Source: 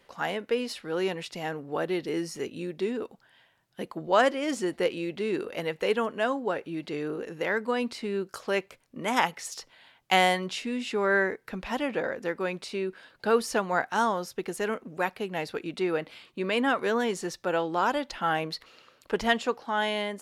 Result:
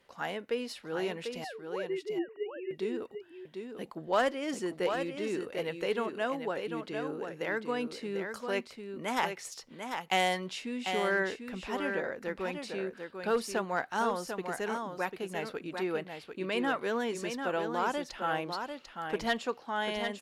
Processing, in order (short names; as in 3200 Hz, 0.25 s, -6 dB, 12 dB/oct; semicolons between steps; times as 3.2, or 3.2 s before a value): 1.44–2.71 sine-wave speech; one-sided clip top -17 dBFS; echo 0.745 s -6.5 dB; gain -5.5 dB